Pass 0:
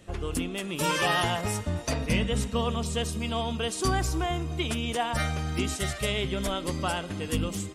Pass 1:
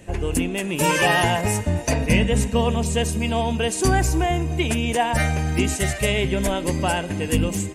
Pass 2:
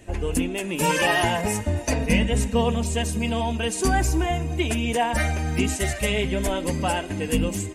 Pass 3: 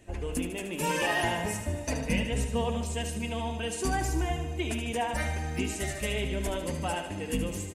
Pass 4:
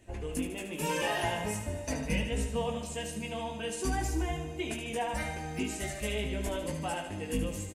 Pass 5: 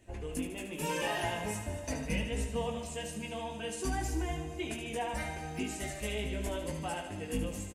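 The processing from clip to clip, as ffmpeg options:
-af "superequalizer=10b=0.398:13b=0.447:14b=0.562,volume=8dB"
-af "flanger=delay=2.7:depth=1.9:regen=-34:speed=1.7:shape=triangular,volume=1.5dB"
-af "aecho=1:1:75|150|225|300|375|450|525:0.376|0.218|0.126|0.0733|0.0425|0.0247|0.0143,volume=-8dB"
-filter_complex "[0:a]asplit=2[a][b];[b]adelay=19,volume=-5dB[c];[a][c]amix=inputs=2:normalize=0,volume=-4dB"
-af "aecho=1:1:228|456|684|912|1140:0.158|0.0872|0.0479|0.0264|0.0145,volume=-2.5dB"

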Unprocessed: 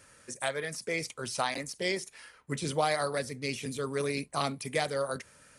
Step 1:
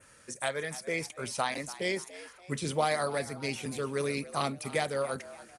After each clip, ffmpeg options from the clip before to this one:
-filter_complex "[0:a]adynamicequalizer=threshold=0.00251:dfrequency=4900:dqfactor=1.7:tfrequency=4900:tqfactor=1.7:attack=5:release=100:ratio=0.375:range=2.5:mode=cutabove:tftype=bell,asplit=5[a][b][c][d][e];[b]adelay=288,afreqshift=89,volume=-16.5dB[f];[c]adelay=576,afreqshift=178,volume=-24.2dB[g];[d]adelay=864,afreqshift=267,volume=-32dB[h];[e]adelay=1152,afreqshift=356,volume=-39.7dB[i];[a][f][g][h][i]amix=inputs=5:normalize=0"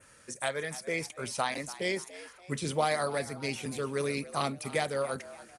-af anull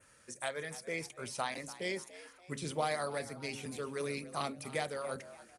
-af "bandreject=f=68.95:t=h:w=4,bandreject=f=137.9:t=h:w=4,bandreject=f=206.85:t=h:w=4,bandreject=f=275.8:t=h:w=4,bandreject=f=344.75:t=h:w=4,bandreject=f=413.7:t=h:w=4,bandreject=f=482.65:t=h:w=4,bandreject=f=551.6:t=h:w=4,volume=-5.5dB"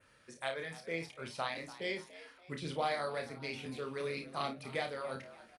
-filter_complex "[0:a]highshelf=f=5.3k:t=q:w=1.5:g=-8.5,asplit=2[a][b];[b]aecho=0:1:30|54:0.473|0.251[c];[a][c]amix=inputs=2:normalize=0,volume=-2dB"

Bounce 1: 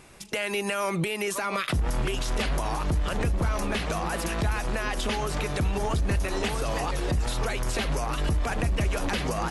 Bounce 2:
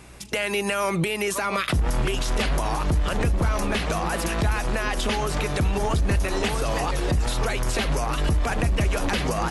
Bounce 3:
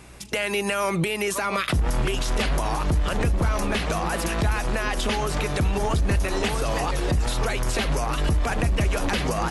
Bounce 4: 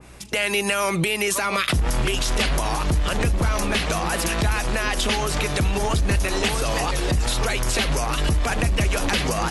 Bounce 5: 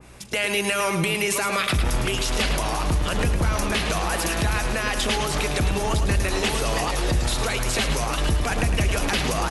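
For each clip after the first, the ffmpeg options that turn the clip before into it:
-af "aeval=exprs='val(0)+0.00282*(sin(2*PI*60*n/s)+sin(2*PI*2*60*n/s)/2+sin(2*PI*3*60*n/s)/3+sin(2*PI*4*60*n/s)/4+sin(2*PI*5*60*n/s)/5)':c=same,volume=3.5dB"
-af anull
-af "adynamicequalizer=threshold=0.0112:dfrequency=1900:dqfactor=0.7:tfrequency=1900:tqfactor=0.7:attack=5:release=100:ratio=0.375:range=2.5:mode=boostabove:tftype=highshelf,volume=1dB"
-af "aecho=1:1:108|216|324|432|540:0.398|0.179|0.0806|0.0363|0.0163,volume=-1.5dB"

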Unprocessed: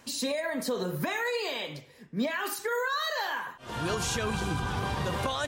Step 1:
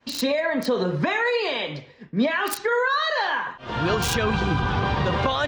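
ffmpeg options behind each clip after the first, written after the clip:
-filter_complex "[0:a]agate=range=-33dB:threshold=-50dB:ratio=3:detection=peak,acrossover=split=5000[a][b];[b]acrusher=bits=4:mix=0:aa=0.000001[c];[a][c]amix=inputs=2:normalize=0,volume=8dB"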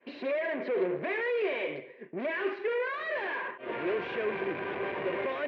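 -af "aeval=exprs='(tanh(35.5*val(0)+0.55)-tanh(0.55))/35.5':c=same,highpass=370,equalizer=f=380:t=q:w=4:g=10,equalizer=f=560:t=q:w=4:g=3,equalizer=f=830:t=q:w=4:g=-9,equalizer=f=1.3k:t=q:w=4:g=-10,equalizer=f=2.3k:t=q:w=4:g=4,lowpass=f=2.3k:w=0.5412,lowpass=f=2.3k:w=1.3066,volume=2.5dB"

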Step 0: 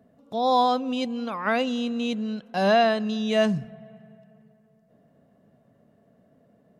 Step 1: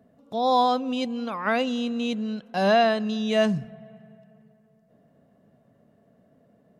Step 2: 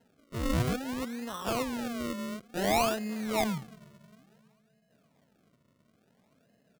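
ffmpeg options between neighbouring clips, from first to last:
-af anull
-af "aresample=8000,aresample=44100,acrusher=samples=37:mix=1:aa=0.000001:lfo=1:lforange=37:lforate=0.57,volume=-7.5dB"

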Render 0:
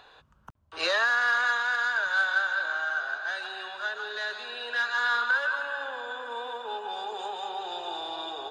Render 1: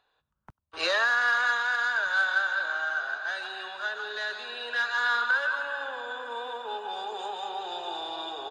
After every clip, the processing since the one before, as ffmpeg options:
-af "aecho=1:1:95:0.112,agate=range=-19dB:threshold=-47dB:ratio=16:detection=peak"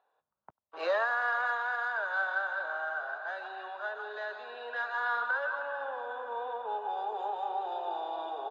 -af "bandpass=f=680:t=q:w=1.5:csg=0,volume=2.5dB"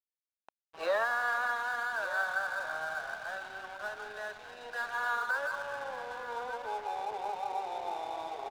-af "aeval=exprs='sgn(val(0))*max(abs(val(0))-0.00473,0)':c=same,aecho=1:1:1188:0.211"

